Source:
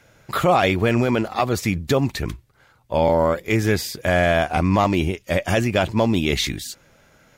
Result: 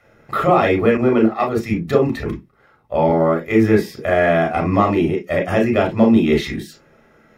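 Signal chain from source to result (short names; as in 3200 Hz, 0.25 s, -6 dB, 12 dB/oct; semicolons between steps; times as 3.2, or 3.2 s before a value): low shelf 81 Hz +7.5 dB; reverb RT60 0.15 s, pre-delay 26 ms, DRR 1 dB; 0.97–1.74 three-band expander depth 100%; gain -9 dB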